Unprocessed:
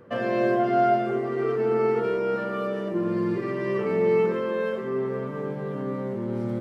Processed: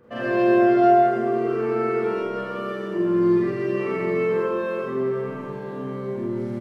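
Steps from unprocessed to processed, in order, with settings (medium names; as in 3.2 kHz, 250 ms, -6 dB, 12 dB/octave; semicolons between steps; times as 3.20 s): doubling 43 ms -7.5 dB; Schroeder reverb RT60 1 s, combs from 31 ms, DRR -5.5 dB; trim -5 dB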